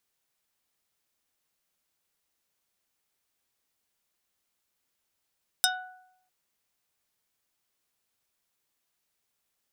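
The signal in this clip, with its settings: plucked string F#5, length 0.65 s, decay 0.80 s, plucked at 0.33, dark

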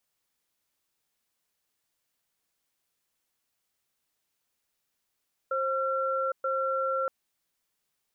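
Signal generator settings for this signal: cadence 531 Hz, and 1360 Hz, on 0.81 s, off 0.12 s, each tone -28.5 dBFS 1.57 s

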